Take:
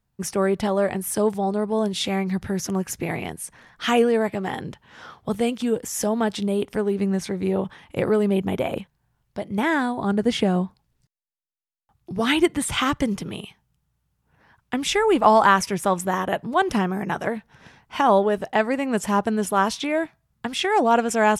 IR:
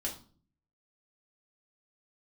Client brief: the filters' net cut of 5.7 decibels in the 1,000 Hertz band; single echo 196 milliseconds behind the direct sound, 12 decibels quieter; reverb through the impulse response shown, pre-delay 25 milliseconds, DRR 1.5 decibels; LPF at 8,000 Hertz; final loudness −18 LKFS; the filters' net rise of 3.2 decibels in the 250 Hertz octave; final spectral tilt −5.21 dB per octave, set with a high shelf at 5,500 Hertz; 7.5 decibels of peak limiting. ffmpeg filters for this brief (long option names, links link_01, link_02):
-filter_complex "[0:a]lowpass=8000,equalizer=frequency=250:width_type=o:gain=4.5,equalizer=frequency=1000:width_type=o:gain=-8,highshelf=frequency=5500:gain=6.5,alimiter=limit=-12.5dB:level=0:latency=1,aecho=1:1:196:0.251,asplit=2[link_01][link_02];[1:a]atrim=start_sample=2205,adelay=25[link_03];[link_02][link_03]afir=irnorm=-1:irlink=0,volume=-3dB[link_04];[link_01][link_04]amix=inputs=2:normalize=0,volume=1.5dB"